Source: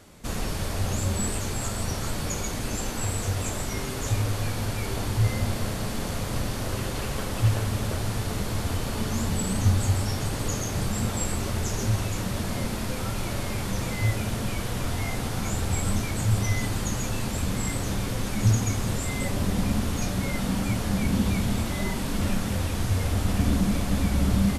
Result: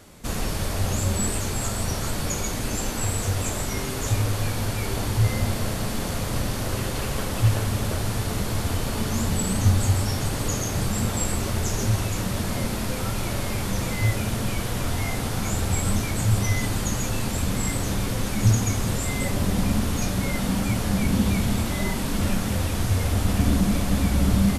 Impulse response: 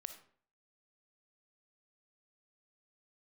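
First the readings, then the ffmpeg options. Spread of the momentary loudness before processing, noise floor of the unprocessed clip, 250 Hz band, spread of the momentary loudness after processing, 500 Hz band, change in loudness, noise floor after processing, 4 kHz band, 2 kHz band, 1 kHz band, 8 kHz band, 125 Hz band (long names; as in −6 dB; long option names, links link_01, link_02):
6 LU, −31 dBFS, +2.5 dB, 5 LU, +2.5 dB, +2.5 dB, −28 dBFS, +2.5 dB, +2.5 dB, +2.5 dB, +3.5 dB, +2.5 dB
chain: -filter_complex "[0:a]asplit=2[link_01][link_02];[1:a]atrim=start_sample=2205,highshelf=frequency=9100:gain=8[link_03];[link_02][link_03]afir=irnorm=-1:irlink=0,volume=-0.5dB[link_04];[link_01][link_04]amix=inputs=2:normalize=0,volume=-1.5dB"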